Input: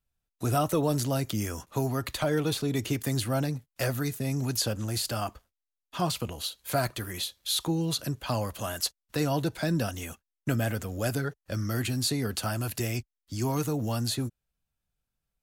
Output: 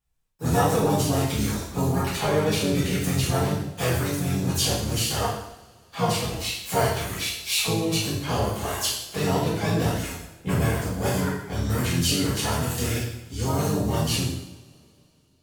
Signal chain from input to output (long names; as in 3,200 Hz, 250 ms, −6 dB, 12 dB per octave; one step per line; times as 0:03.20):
pitch-shifted copies added −7 semitones −2 dB, +5 semitones −6 dB
coupled-rooms reverb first 0.78 s, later 3.1 s, from −25 dB, DRR −8 dB
level −5.5 dB